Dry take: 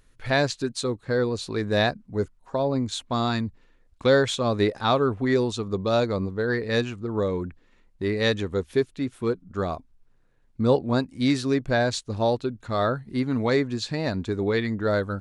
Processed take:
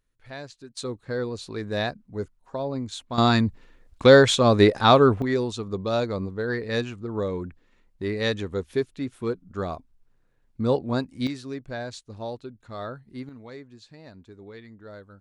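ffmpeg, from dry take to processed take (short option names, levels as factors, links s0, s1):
-af "asetnsamples=n=441:p=0,asendcmd='0.77 volume volume -5dB;3.18 volume volume 6dB;5.22 volume volume -2.5dB;11.27 volume volume -11dB;13.29 volume volume -19.5dB',volume=0.15"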